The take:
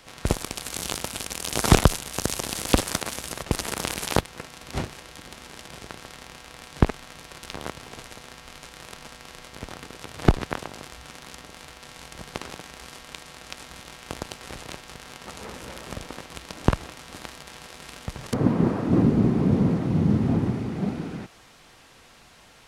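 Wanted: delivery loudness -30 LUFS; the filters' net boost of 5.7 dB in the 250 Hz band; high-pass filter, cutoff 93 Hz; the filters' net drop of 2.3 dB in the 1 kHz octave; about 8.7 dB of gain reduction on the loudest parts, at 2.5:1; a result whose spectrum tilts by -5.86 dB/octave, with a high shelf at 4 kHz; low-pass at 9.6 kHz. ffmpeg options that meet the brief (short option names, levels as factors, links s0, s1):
-af "highpass=93,lowpass=9600,equalizer=f=250:t=o:g=7.5,equalizer=f=1000:t=o:g=-3,highshelf=f=4000:g=-6.5,acompressor=threshold=0.0794:ratio=2.5,volume=0.891"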